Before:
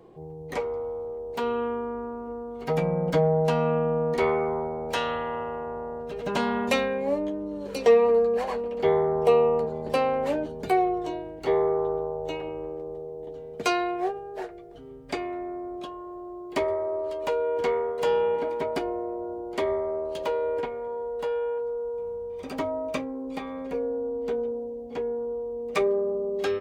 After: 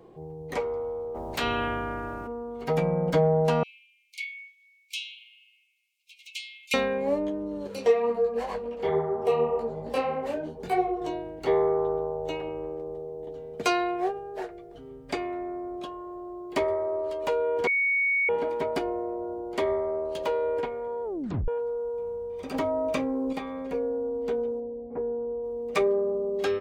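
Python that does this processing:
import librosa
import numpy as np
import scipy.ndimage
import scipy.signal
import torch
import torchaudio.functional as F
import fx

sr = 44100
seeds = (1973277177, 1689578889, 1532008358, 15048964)

y = fx.spec_clip(x, sr, under_db=24, at=(1.14, 2.26), fade=0.02)
y = fx.brickwall_highpass(y, sr, low_hz=2100.0, at=(3.63, 6.74))
y = fx.detune_double(y, sr, cents=fx.line((7.67, 20.0), (11.0, 38.0)), at=(7.67, 11.0), fade=0.02)
y = fx.env_flatten(y, sr, amount_pct=70, at=(22.54, 23.33))
y = fx.gaussian_blur(y, sr, sigma=6.3, at=(24.6, 25.44))
y = fx.edit(y, sr, fx.bleep(start_s=17.67, length_s=0.62, hz=2230.0, db=-21.5),
    fx.tape_stop(start_s=21.04, length_s=0.44), tone=tone)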